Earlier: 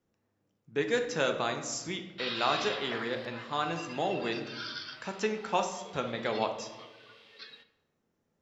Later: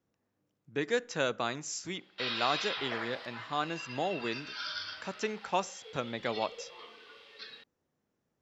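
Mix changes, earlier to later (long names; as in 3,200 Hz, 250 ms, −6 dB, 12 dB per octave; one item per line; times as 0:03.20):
speech: send off
background: send +6.0 dB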